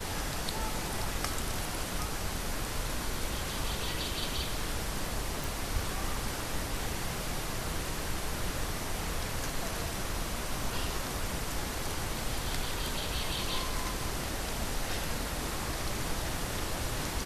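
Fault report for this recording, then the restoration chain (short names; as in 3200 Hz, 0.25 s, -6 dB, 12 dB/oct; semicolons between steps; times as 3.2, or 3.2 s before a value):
5.44 pop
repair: de-click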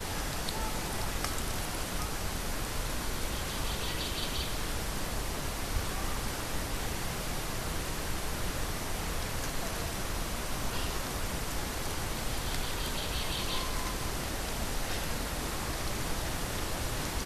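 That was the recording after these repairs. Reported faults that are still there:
none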